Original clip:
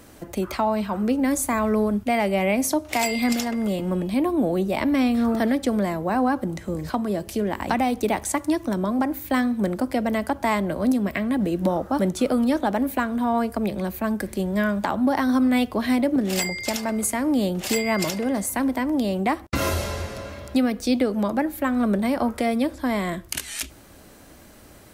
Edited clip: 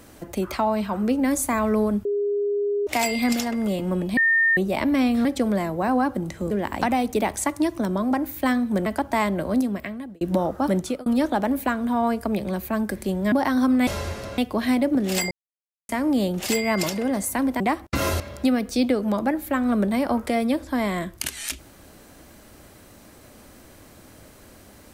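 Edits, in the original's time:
2.05–2.87 s: bleep 408 Hz -20.5 dBFS
4.17–4.57 s: bleep 1.82 kHz -15.5 dBFS
5.25–5.52 s: delete
6.78–7.39 s: delete
9.74–10.17 s: delete
10.81–11.52 s: fade out
12.12–12.37 s: fade out
14.63–15.04 s: delete
16.52–17.10 s: mute
18.81–19.20 s: delete
19.80–20.31 s: move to 15.59 s

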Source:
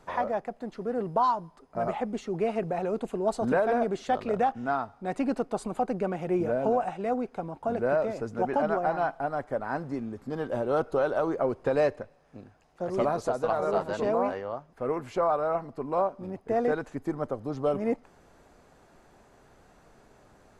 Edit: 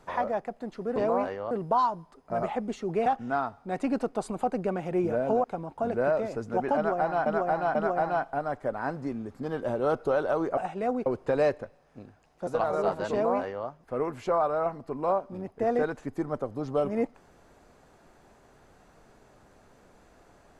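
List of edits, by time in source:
2.51–4.42 s: delete
6.80–7.29 s: move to 11.44 s
8.62–9.11 s: loop, 3 plays
12.85–13.36 s: delete
14.01–14.56 s: copy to 0.96 s

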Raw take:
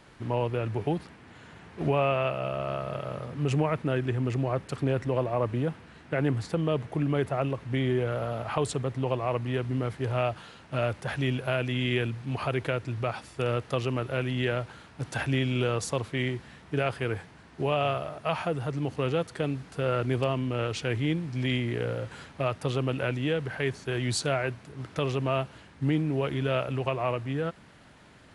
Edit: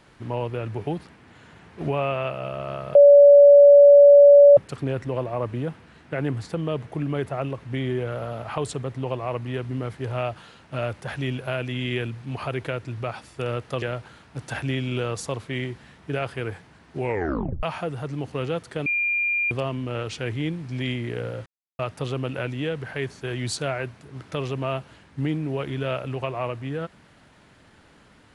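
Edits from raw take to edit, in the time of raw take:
2.95–4.57 s: bleep 572 Hz -7 dBFS
13.82–14.46 s: delete
17.61 s: tape stop 0.66 s
19.50–20.15 s: bleep 2.4 kHz -20.5 dBFS
22.10–22.43 s: mute

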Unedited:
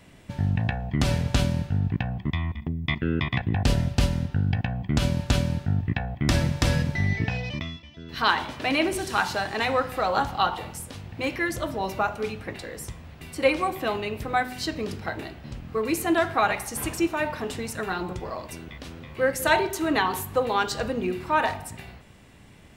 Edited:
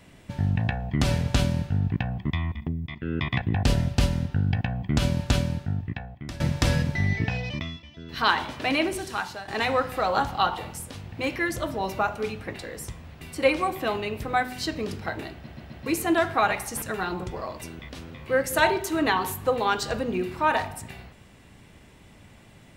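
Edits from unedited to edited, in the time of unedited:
2.87–3.30 s: fade in, from -15 dB
5.30–6.40 s: fade out, to -19.5 dB
8.70–9.48 s: fade out, to -13 dB
15.34 s: stutter in place 0.13 s, 4 plays
16.82–17.71 s: delete

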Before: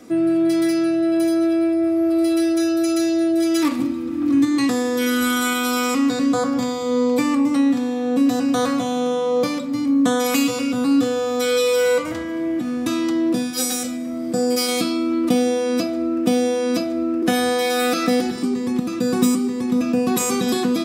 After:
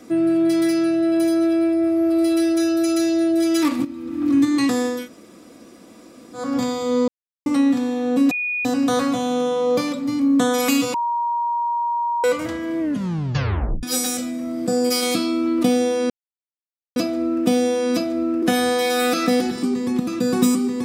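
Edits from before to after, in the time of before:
3.85–4.27 s: fade in, from -12 dB
4.97–6.44 s: room tone, crossfade 0.24 s
7.08–7.46 s: mute
8.31 s: add tone 2.46 kHz -21 dBFS 0.34 s
10.60–11.90 s: bleep 946 Hz -19 dBFS
12.46 s: tape stop 1.03 s
15.76 s: insert silence 0.86 s

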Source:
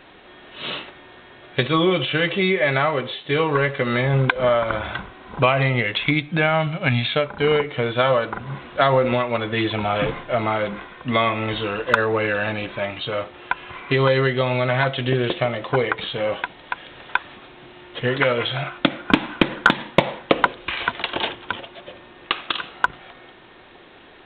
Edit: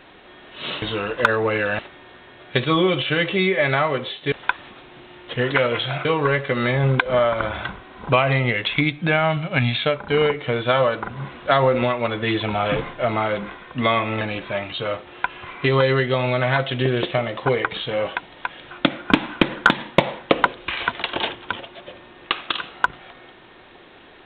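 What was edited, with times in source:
11.51–12.48 s: move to 0.82 s
16.98–18.71 s: move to 3.35 s

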